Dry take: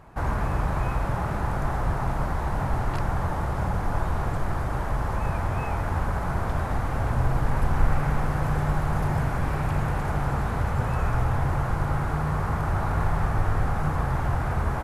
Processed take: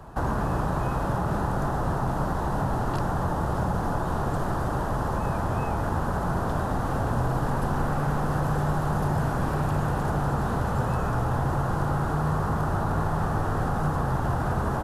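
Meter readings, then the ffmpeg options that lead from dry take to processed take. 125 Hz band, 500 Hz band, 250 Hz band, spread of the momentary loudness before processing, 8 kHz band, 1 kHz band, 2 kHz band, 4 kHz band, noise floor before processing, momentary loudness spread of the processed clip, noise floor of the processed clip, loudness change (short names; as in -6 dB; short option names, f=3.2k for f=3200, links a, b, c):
-0.5 dB, +3.0 dB, +3.0 dB, 3 LU, +2.0 dB, +1.5 dB, -1.0 dB, +0.5 dB, -28 dBFS, 2 LU, -28 dBFS, 0.0 dB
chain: -filter_complex "[0:a]equalizer=f=2.2k:w=3.2:g=-13,acrossover=split=140|410[a][b][c];[a]acompressor=threshold=-37dB:ratio=4[d];[b]acompressor=threshold=-32dB:ratio=4[e];[c]acompressor=threshold=-35dB:ratio=4[f];[d][e][f]amix=inputs=3:normalize=0,volume=6dB"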